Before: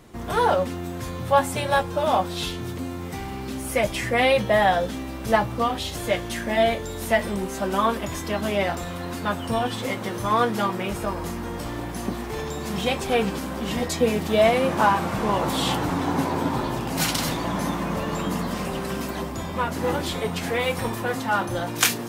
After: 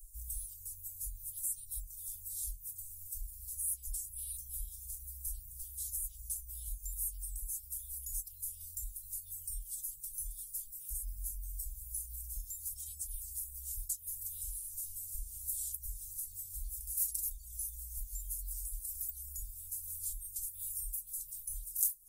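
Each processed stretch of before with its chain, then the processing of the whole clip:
0:12.74–0:13.14: high-pass filter 47 Hz + high-shelf EQ 9,800 Hz −5.5 dB
whole clip: inverse Chebyshev band-stop filter 200–2,000 Hz, stop band 80 dB; reverb reduction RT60 0.59 s; downward compressor 2 to 1, threshold −49 dBFS; level +10 dB

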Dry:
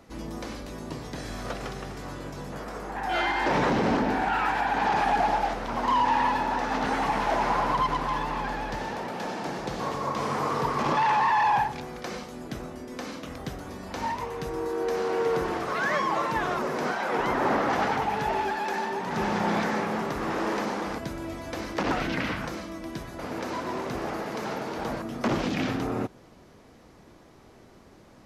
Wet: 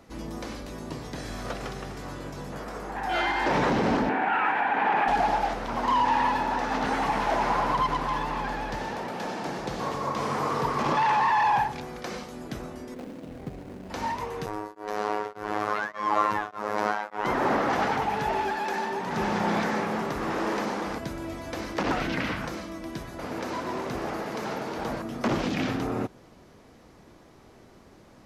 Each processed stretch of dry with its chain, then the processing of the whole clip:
0:04.09–0:05.08: high-pass filter 210 Hz + high shelf with overshoot 3,600 Hz −13.5 dB, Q 1.5
0:12.94–0:13.90: running median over 41 samples + parametric band 64 Hz −8 dB 0.66 octaves
0:14.46–0:17.25: parametric band 1,000 Hz +7 dB 2 octaves + phases set to zero 105 Hz + tremolo along a rectified sine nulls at 1.7 Hz
whole clip: no processing

